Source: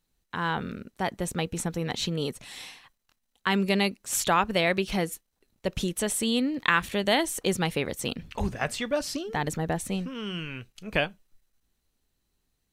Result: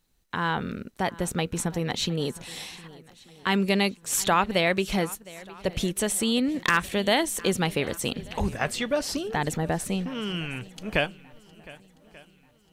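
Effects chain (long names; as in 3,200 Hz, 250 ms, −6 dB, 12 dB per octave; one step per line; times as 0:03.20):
0:02.13–0:03.49: dynamic equaliser 1,600 Hz, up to −4 dB, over −48 dBFS, Q 0.71
in parallel at −2 dB: downward compressor, threshold −36 dBFS, peak gain reduction 17.5 dB
on the sum: wave folding −9.5 dBFS
feedback echo with a long and a short gap by turns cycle 1,186 ms, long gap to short 1.5 to 1, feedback 34%, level −20.5 dB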